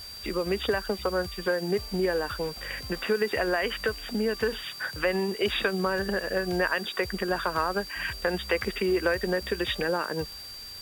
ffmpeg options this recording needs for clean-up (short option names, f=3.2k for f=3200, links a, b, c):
-af "adeclick=t=4,bandreject=f=4.7k:w=30,afwtdn=0.0035"